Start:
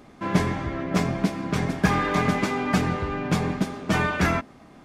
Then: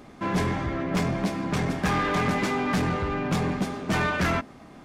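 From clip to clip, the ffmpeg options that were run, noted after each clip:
-af "asoftclip=type=tanh:threshold=-21.5dB,volume=2dB"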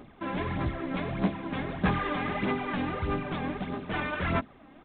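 -af "aphaser=in_gain=1:out_gain=1:delay=3.8:decay=0.57:speed=1.6:type=sinusoidal,aresample=8000,acrusher=bits=5:mode=log:mix=0:aa=0.000001,aresample=44100,volume=-7dB"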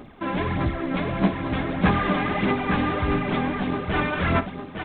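-af "aecho=1:1:57|856:0.158|0.501,volume=6dB"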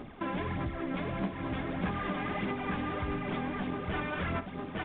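-af "acompressor=threshold=-31dB:ratio=4,volume=-1.5dB" -ar 8000 -c:a pcm_mulaw

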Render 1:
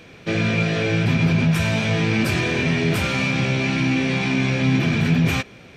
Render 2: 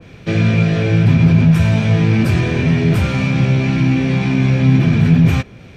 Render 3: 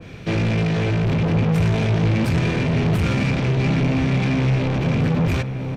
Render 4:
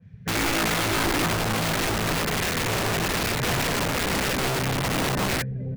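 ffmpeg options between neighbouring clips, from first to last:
-filter_complex "[0:a]lowshelf=f=340:g=4,acrossover=split=160[a][b];[a]acontrast=68[c];[c][b]amix=inputs=2:normalize=0,adynamicequalizer=threshold=0.0141:dfrequency=1900:dqfactor=0.7:tfrequency=1900:tqfactor=0.7:attack=5:release=100:ratio=0.375:range=2:mode=cutabove:tftype=highshelf,volume=1dB"
-filter_complex "[0:a]asoftclip=type=tanh:threshold=-19dB,asplit=2[a][b];[b]adelay=991.3,volume=-7dB,highshelf=f=4k:g=-22.3[c];[a][c]amix=inputs=2:normalize=0,volume=1.5dB"
-af "superequalizer=6b=0.316:11b=2.51,afftdn=nr=24:nf=-26,aeval=exprs='(mod(7.5*val(0)+1,2)-1)/7.5':c=same,volume=-3.5dB"

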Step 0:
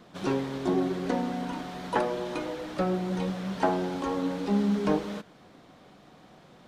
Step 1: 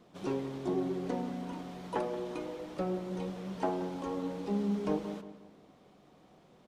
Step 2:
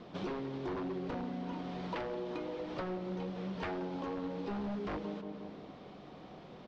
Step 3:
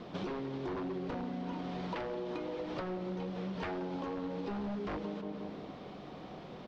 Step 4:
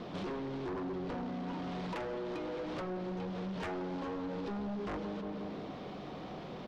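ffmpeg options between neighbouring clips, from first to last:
-filter_complex "[0:a]equalizer=f=400:t=o:w=0.67:g=3,equalizer=f=1.6k:t=o:w=0.67:g=-5,equalizer=f=4k:t=o:w=0.67:g=-3,asplit=2[a][b];[b]adelay=177,lowpass=f=2.3k:p=1,volume=-12dB,asplit=2[c][d];[d]adelay=177,lowpass=f=2.3k:p=1,volume=0.42,asplit=2[e][f];[f]adelay=177,lowpass=f=2.3k:p=1,volume=0.42,asplit=2[g][h];[h]adelay=177,lowpass=f=2.3k:p=1,volume=0.42[i];[c][e][g][i]amix=inputs=4:normalize=0[j];[a][j]amix=inputs=2:normalize=0,volume=-7.5dB"
-af "aeval=exprs='0.0316*(abs(mod(val(0)/0.0316+3,4)-2)-1)':c=same,acompressor=threshold=-47dB:ratio=5,lowpass=f=5k:w=0.5412,lowpass=f=5k:w=1.3066,volume=9.5dB"
-af "acompressor=threshold=-39dB:ratio=6,volume=4dB"
-af "asoftclip=type=tanh:threshold=-39dB,volume=4dB"

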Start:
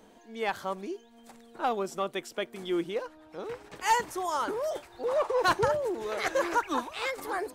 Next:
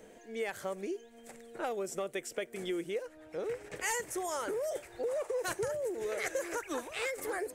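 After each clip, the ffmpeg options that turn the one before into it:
-filter_complex "[0:a]equalizer=f=125:t=o:w=1:g=3,equalizer=f=250:t=o:w=1:g=-4,equalizer=f=500:t=o:w=1:g=8,equalizer=f=1k:t=o:w=1:g=-9,equalizer=f=2k:t=o:w=1:g=7,equalizer=f=4k:t=o:w=1:g=-6,equalizer=f=8k:t=o:w=1:g=6,acrossover=split=6100[a][b];[a]acompressor=threshold=-33dB:ratio=6[c];[c][b]amix=inputs=2:normalize=0"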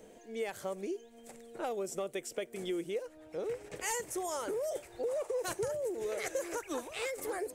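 -af "equalizer=f=1.7k:t=o:w=0.97:g=-5.5"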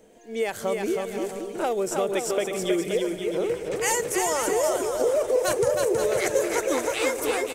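-af "dynaudnorm=f=110:g=5:m=10.5dB,aecho=1:1:320|528|663.2|751.1|808.2:0.631|0.398|0.251|0.158|0.1"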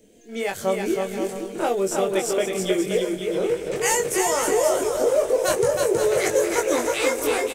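-filter_complex "[0:a]acrossover=split=550|1900[a][b][c];[b]aeval=exprs='sgn(val(0))*max(abs(val(0))-0.00355,0)':c=same[d];[a][d][c]amix=inputs=3:normalize=0,asplit=2[e][f];[f]adelay=21,volume=-3.5dB[g];[e][g]amix=inputs=2:normalize=0,volume=1.5dB"

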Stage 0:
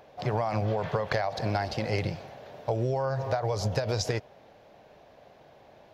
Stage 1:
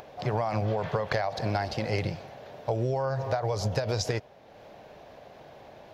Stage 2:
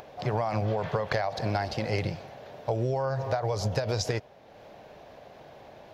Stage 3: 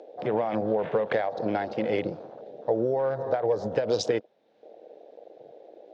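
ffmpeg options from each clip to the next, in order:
-af "acompressor=mode=upward:threshold=-41dB:ratio=2.5"
-af anull
-af "afwtdn=0.01,highpass=210,equalizer=f=220:t=q:w=4:g=6,equalizer=f=320:t=q:w=4:g=7,equalizer=f=480:t=q:w=4:g=8,equalizer=f=1.1k:t=q:w=4:g=-4,equalizer=f=3.7k:t=q:w=4:g=6,lowpass=f=7.5k:w=0.5412,lowpass=f=7.5k:w=1.3066"

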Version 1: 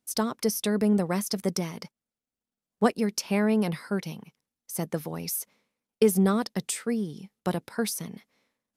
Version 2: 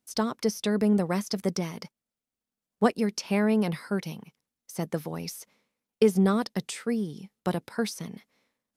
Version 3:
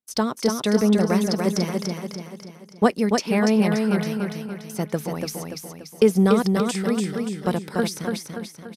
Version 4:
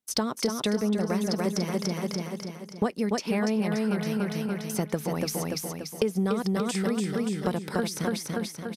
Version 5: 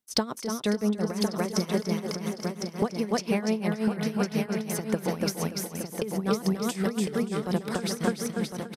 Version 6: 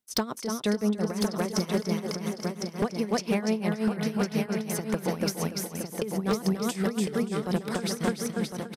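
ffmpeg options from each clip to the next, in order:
-filter_complex "[0:a]acrossover=split=6500[a][b];[b]acompressor=threshold=-45dB:ratio=4:attack=1:release=60[c];[a][c]amix=inputs=2:normalize=0"
-af "agate=range=-19dB:threshold=-49dB:ratio=16:detection=peak,aecho=1:1:289|578|867|1156|1445|1734:0.631|0.303|0.145|0.0698|0.0335|0.0161,volume=4.5dB"
-af "acompressor=threshold=-28dB:ratio=5,volume=3.5dB"
-af "tremolo=f=5.7:d=0.8,aecho=1:1:1055:0.501,volume=2.5dB"
-af "aeval=exprs='0.141*(abs(mod(val(0)/0.141+3,4)-2)-1)':c=same"

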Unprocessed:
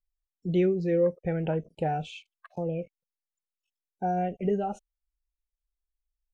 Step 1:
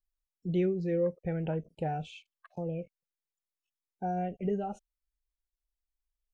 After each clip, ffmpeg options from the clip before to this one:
-af "bass=f=250:g=3,treble=f=4k:g=0,volume=-5.5dB"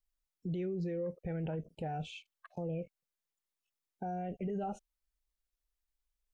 -af "alimiter=level_in=7.5dB:limit=-24dB:level=0:latency=1:release=22,volume=-7.5dB,volume=1dB"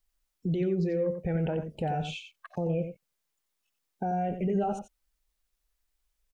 -af "aecho=1:1:90:0.376,volume=8dB"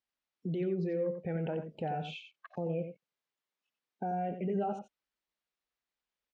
-af "highpass=160,lowpass=3.9k,volume=-4dB"

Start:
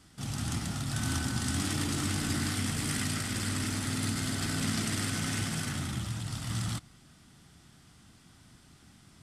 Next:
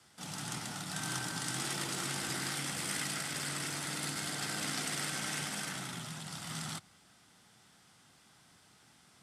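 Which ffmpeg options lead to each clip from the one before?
-af "afreqshift=45,lowshelf=f=440:t=q:w=1.5:g=-8,volume=-2dB"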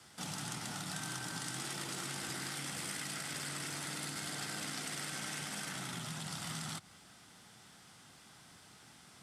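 -af "acompressor=threshold=-43dB:ratio=6,volume=4.5dB"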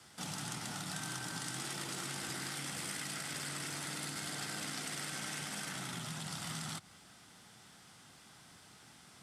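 -af anull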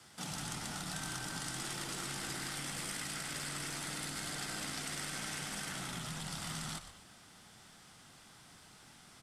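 -filter_complex "[0:a]asplit=5[a][b][c][d][e];[b]adelay=121,afreqshift=-120,volume=-11dB[f];[c]adelay=242,afreqshift=-240,volume=-20.6dB[g];[d]adelay=363,afreqshift=-360,volume=-30.3dB[h];[e]adelay=484,afreqshift=-480,volume=-39.9dB[i];[a][f][g][h][i]amix=inputs=5:normalize=0"

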